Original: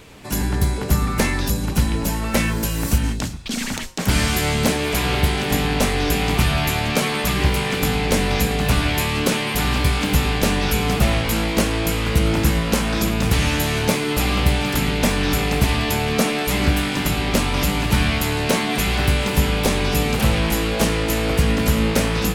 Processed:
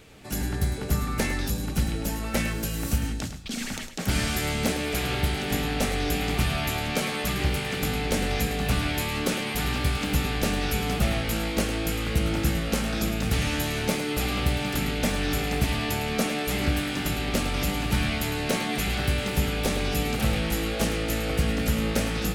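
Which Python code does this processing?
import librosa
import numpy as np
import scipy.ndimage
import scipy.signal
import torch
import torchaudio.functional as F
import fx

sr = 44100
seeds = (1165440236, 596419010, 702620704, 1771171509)

y = fx.notch(x, sr, hz=1000.0, q=7.5)
y = y + 10.0 ** (-11.0 / 20.0) * np.pad(y, (int(105 * sr / 1000.0), 0))[:len(y)]
y = F.gain(torch.from_numpy(y), -7.0).numpy()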